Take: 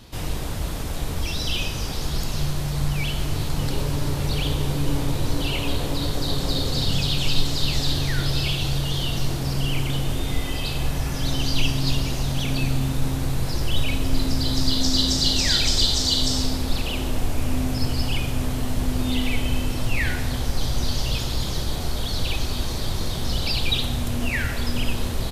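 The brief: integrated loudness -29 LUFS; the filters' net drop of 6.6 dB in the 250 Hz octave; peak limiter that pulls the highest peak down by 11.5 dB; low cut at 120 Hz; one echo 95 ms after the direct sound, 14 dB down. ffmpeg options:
-af "highpass=120,equalizer=f=250:t=o:g=-8,alimiter=limit=-20dB:level=0:latency=1,aecho=1:1:95:0.2"

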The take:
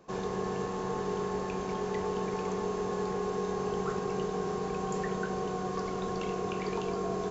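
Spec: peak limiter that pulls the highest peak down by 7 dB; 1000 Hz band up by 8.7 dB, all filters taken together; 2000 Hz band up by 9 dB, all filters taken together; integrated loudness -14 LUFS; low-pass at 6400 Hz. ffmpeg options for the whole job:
-af "lowpass=6.4k,equalizer=f=1k:t=o:g=8.5,equalizer=f=2k:t=o:g=8.5,volume=17.5dB,alimiter=limit=-5dB:level=0:latency=1"

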